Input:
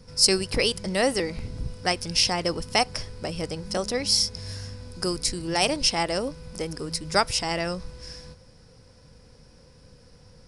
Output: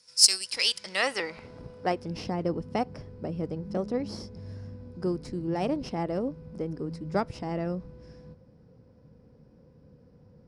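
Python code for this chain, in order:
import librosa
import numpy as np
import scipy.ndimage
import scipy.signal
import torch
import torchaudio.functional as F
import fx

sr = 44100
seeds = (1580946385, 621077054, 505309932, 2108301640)

y = fx.cheby_harmonics(x, sr, harmonics=(3, 8), levels_db=(-20, -31), full_scale_db=-3.0)
y = fx.filter_sweep_bandpass(y, sr, from_hz=7300.0, to_hz=230.0, start_s=0.41, end_s=2.22, q=0.77)
y = y * 10.0 ** (4.5 / 20.0)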